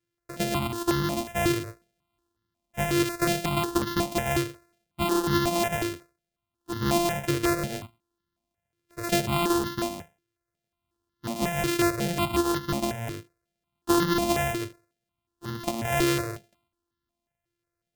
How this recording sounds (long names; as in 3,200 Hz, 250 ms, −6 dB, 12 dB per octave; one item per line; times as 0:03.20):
a buzz of ramps at a fixed pitch in blocks of 128 samples
notches that jump at a steady rate 5.5 Hz 210–2,400 Hz